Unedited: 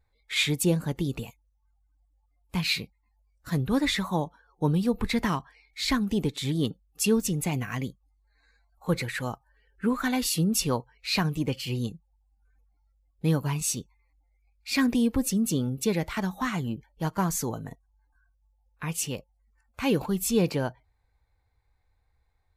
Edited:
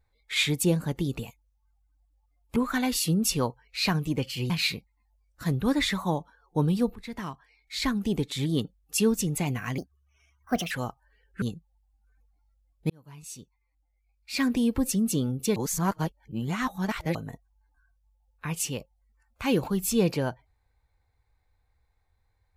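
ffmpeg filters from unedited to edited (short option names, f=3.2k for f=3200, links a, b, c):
-filter_complex "[0:a]asplit=10[a][b][c][d][e][f][g][h][i][j];[a]atrim=end=2.562[k];[b]atrim=start=9.858:end=11.802[l];[c]atrim=start=2.558:end=5.01,asetpts=PTS-STARTPTS,afade=t=out:st=2.448:d=0.004:c=hsin:silence=0.125893[m];[d]atrim=start=5.01:end=7.844,asetpts=PTS-STARTPTS,afade=t=in:d=1.61:c=qsin:silence=0.125893[n];[e]atrim=start=7.84:end=9.15,asetpts=PTS-STARTPTS,asetrate=62181,aresample=44100,atrim=end_sample=40972,asetpts=PTS-STARTPTS[o];[f]atrim=start=9.146:end=9.862[p];[g]atrim=start=11.798:end=13.28,asetpts=PTS-STARTPTS,afade=t=out:st=1.478:d=0.004:c=hsin[q];[h]atrim=start=13.28:end=15.942,asetpts=PTS-STARTPTS,afade=t=in:d=1.92[r];[i]atrim=start=15.938:end=17.532,asetpts=PTS-STARTPTS,areverse[s];[j]atrim=start=17.528[t];[k][l]acrossfade=d=0.004:c1=hsin:c2=hsin[u];[m][n]concat=n=2:v=0:a=1[v];[u][v]acrossfade=d=0.004:c1=hsin:c2=hsin[w];[w][o]acrossfade=d=0.004:c1=hsin:c2=hsin[x];[x][p]acrossfade=d=0.004:c1=hsin:c2=hsin[y];[q][r]concat=n=2:v=0:a=1[z];[y][z]acrossfade=d=0.004:c1=hsin:c2=hsin[aa];[aa][s]acrossfade=d=0.004:c1=hsin:c2=hsin[ab];[ab][t]acrossfade=d=0.004:c1=hsin:c2=hsin"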